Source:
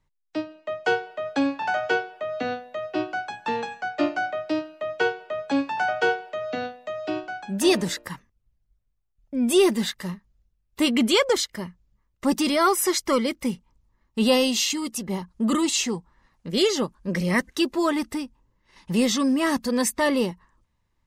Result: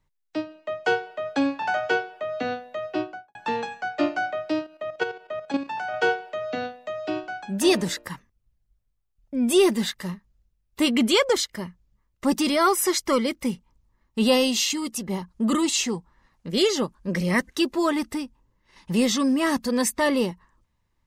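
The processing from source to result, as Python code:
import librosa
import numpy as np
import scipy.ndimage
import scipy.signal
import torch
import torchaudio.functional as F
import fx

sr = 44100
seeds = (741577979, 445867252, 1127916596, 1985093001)

y = fx.studio_fade_out(x, sr, start_s=2.92, length_s=0.43)
y = fx.level_steps(y, sr, step_db=10, at=(4.64, 5.94))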